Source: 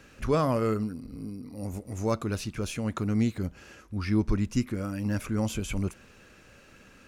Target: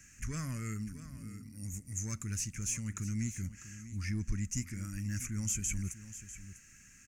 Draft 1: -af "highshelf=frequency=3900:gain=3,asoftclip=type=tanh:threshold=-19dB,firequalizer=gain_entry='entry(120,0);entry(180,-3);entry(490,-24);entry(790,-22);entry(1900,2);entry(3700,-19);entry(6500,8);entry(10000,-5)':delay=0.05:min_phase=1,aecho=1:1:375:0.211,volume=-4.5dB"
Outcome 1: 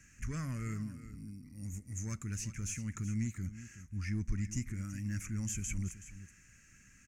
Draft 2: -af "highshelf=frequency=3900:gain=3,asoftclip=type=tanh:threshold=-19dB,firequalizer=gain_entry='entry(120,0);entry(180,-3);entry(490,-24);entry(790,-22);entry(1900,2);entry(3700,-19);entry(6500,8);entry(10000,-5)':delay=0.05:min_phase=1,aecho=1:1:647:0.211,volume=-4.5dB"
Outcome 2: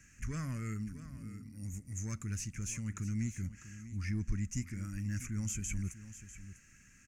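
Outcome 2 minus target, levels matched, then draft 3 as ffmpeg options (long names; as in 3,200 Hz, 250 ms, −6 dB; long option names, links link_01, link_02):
8,000 Hz band −4.0 dB
-af "highshelf=frequency=3900:gain=11,asoftclip=type=tanh:threshold=-19dB,firequalizer=gain_entry='entry(120,0);entry(180,-3);entry(490,-24);entry(790,-22);entry(1900,2);entry(3700,-19);entry(6500,8);entry(10000,-5)':delay=0.05:min_phase=1,aecho=1:1:647:0.211,volume=-4.5dB"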